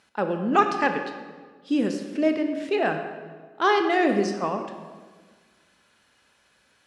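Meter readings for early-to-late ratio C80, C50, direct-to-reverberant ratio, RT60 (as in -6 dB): 8.5 dB, 7.0 dB, 5.5 dB, 1.5 s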